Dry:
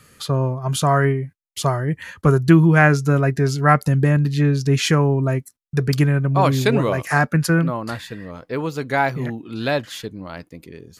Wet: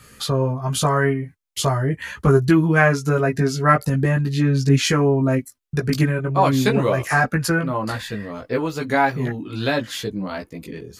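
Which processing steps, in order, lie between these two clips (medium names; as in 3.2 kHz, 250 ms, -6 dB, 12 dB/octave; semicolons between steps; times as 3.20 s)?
in parallel at +2 dB: compression, threshold -25 dBFS, peak gain reduction 16.5 dB; on the sum: chorus voices 6, 0.39 Hz, delay 17 ms, depth 2.6 ms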